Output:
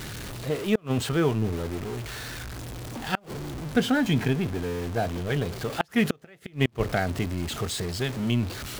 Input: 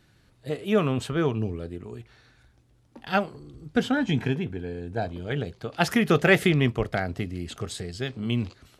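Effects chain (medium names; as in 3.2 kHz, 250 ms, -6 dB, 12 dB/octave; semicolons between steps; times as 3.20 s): jump at every zero crossing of -31 dBFS; inverted gate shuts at -10 dBFS, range -34 dB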